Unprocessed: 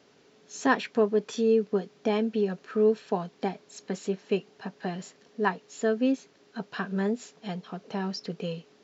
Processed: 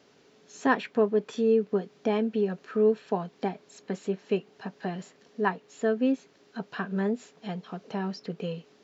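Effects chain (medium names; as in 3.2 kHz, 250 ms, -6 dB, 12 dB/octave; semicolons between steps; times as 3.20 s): dynamic bell 5.8 kHz, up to -8 dB, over -55 dBFS, Q 0.91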